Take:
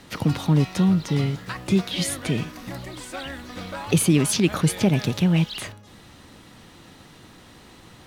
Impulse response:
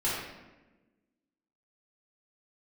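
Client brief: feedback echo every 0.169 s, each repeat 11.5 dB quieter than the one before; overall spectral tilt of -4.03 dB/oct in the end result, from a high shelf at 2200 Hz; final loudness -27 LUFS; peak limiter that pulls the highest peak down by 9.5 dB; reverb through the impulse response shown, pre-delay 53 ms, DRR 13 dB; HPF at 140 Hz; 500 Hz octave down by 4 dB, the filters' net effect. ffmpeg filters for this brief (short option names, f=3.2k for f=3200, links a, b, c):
-filter_complex "[0:a]highpass=140,equalizer=f=500:t=o:g=-6,highshelf=f=2.2k:g=6,alimiter=limit=-15.5dB:level=0:latency=1,aecho=1:1:169|338|507:0.266|0.0718|0.0194,asplit=2[a][b];[1:a]atrim=start_sample=2205,adelay=53[c];[b][c]afir=irnorm=-1:irlink=0,volume=-22.5dB[d];[a][d]amix=inputs=2:normalize=0,volume=-1dB"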